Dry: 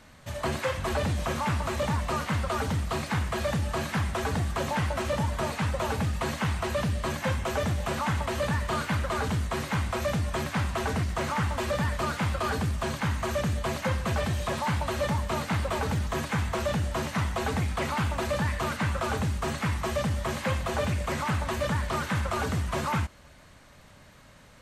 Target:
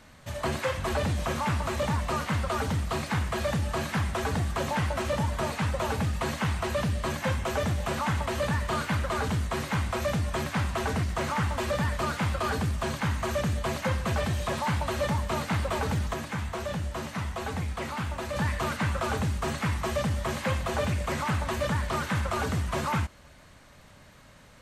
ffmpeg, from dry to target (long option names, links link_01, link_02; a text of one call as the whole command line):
ffmpeg -i in.wav -filter_complex "[0:a]asplit=3[link_01][link_02][link_03];[link_01]afade=type=out:start_time=16.13:duration=0.02[link_04];[link_02]flanger=delay=9.4:depth=9.1:regen=73:speed=1.2:shape=triangular,afade=type=in:start_time=16.13:duration=0.02,afade=type=out:start_time=18.35:duration=0.02[link_05];[link_03]afade=type=in:start_time=18.35:duration=0.02[link_06];[link_04][link_05][link_06]amix=inputs=3:normalize=0" out.wav